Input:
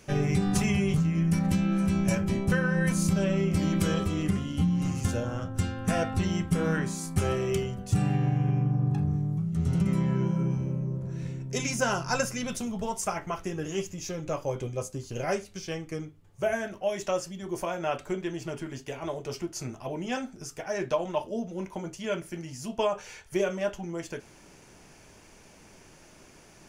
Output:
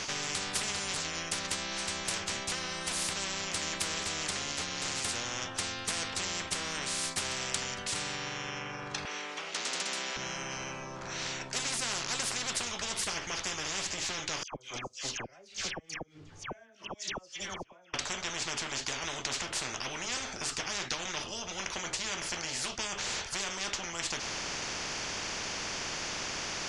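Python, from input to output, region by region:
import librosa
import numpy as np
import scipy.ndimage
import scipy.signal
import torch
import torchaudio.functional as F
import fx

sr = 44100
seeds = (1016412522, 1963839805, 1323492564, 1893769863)

y = fx.chain(x, sr, fx.steep_highpass(hz=420.0, slope=36),
    fx.peak_eq(hz=2500.0, db=13.5, octaves=1.2), at=(9.05, 10.17))
y = fx.chain(y, sr, fx.gate_flip(shuts_db=-23.0, range_db=-39),
    fx.dispersion(late='lows', ms=95.0, hz=1700.0),
    fx.upward_expand(threshold_db=-47.0, expansion=1.5), at=(14.43, 17.94))
y = scipy.signal.sosfilt(scipy.signal.butter(4, 5800.0, 'lowpass', fs=sr, output='sos'), y)
y = fx.tilt_eq(y, sr, slope=2.0)
y = fx.spectral_comp(y, sr, ratio=10.0)
y = F.gain(torch.from_numpy(y), -2.0).numpy()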